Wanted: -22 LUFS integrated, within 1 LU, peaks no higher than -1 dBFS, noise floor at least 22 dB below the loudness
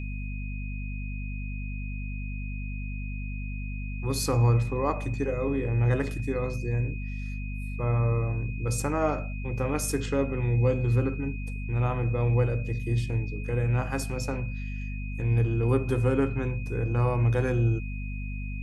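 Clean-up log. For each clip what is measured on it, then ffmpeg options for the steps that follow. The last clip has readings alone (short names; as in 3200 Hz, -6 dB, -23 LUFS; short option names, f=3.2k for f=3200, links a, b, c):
hum 50 Hz; harmonics up to 250 Hz; hum level -31 dBFS; steady tone 2500 Hz; tone level -43 dBFS; loudness -28.5 LUFS; peak -12.0 dBFS; loudness target -22.0 LUFS
-> -af "bandreject=f=50:t=h:w=4,bandreject=f=100:t=h:w=4,bandreject=f=150:t=h:w=4,bandreject=f=200:t=h:w=4,bandreject=f=250:t=h:w=4"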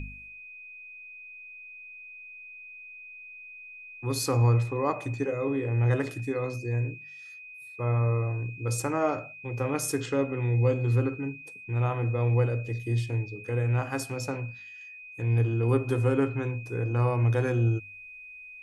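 hum none; steady tone 2500 Hz; tone level -43 dBFS
-> -af "bandreject=f=2.5k:w=30"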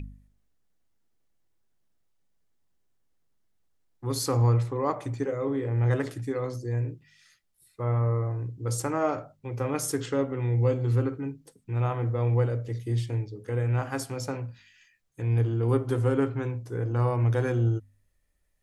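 steady tone none; loudness -28.0 LUFS; peak -12.5 dBFS; loudness target -22.0 LUFS
-> -af "volume=6dB"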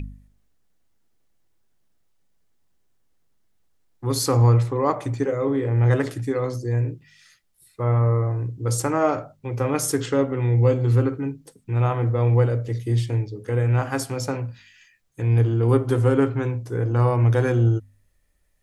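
loudness -22.0 LUFS; peak -6.5 dBFS; noise floor -64 dBFS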